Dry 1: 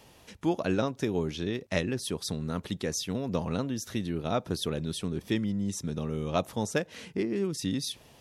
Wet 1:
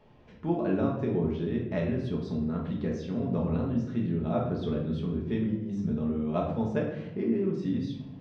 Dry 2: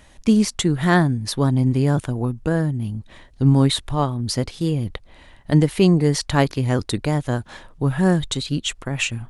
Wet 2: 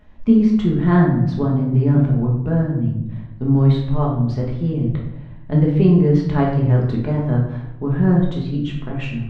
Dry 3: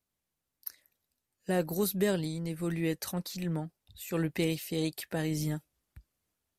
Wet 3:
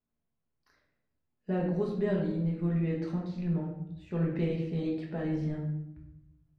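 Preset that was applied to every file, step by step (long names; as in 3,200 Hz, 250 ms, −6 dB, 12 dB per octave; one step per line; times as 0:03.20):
head-to-tape spacing loss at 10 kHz 41 dB
rectangular room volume 240 cubic metres, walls mixed, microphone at 1.4 metres
level −2.5 dB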